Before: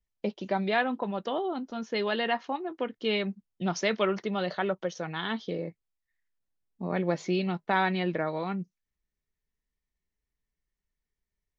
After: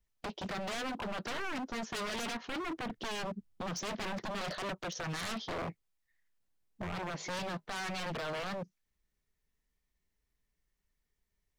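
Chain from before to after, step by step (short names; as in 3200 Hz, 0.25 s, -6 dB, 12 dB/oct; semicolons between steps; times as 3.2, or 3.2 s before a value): 2.23–4.41 low shelf 250 Hz +11.5 dB; compressor 12:1, threshold -28 dBFS, peak gain reduction 10 dB; limiter -24.5 dBFS, peak gain reduction 8.5 dB; wavefolder -36.5 dBFS; Doppler distortion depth 0.26 ms; gain +4 dB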